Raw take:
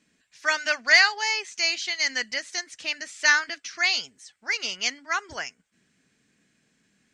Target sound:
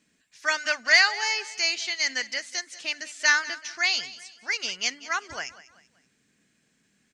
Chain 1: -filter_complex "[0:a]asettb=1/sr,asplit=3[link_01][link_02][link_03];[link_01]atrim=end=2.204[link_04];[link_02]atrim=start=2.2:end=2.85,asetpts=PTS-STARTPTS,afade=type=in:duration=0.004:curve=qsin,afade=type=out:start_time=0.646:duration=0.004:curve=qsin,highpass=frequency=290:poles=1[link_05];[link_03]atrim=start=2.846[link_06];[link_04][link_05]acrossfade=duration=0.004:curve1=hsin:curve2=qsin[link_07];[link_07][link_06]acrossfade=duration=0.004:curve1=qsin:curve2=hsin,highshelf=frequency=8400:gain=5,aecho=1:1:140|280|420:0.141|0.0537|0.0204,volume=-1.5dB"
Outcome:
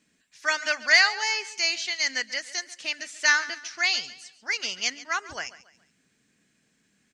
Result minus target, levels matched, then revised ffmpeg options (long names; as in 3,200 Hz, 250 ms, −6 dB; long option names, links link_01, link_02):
echo 51 ms early
-filter_complex "[0:a]asettb=1/sr,asplit=3[link_01][link_02][link_03];[link_01]atrim=end=2.204[link_04];[link_02]atrim=start=2.2:end=2.85,asetpts=PTS-STARTPTS,afade=type=in:duration=0.004:curve=qsin,afade=type=out:start_time=0.646:duration=0.004:curve=qsin,highpass=frequency=290:poles=1[link_05];[link_03]atrim=start=2.846[link_06];[link_04][link_05]acrossfade=duration=0.004:curve1=hsin:curve2=qsin[link_07];[link_07][link_06]acrossfade=duration=0.004:curve1=qsin:curve2=hsin,highshelf=frequency=8400:gain=5,aecho=1:1:191|382|573:0.141|0.0537|0.0204,volume=-1.5dB"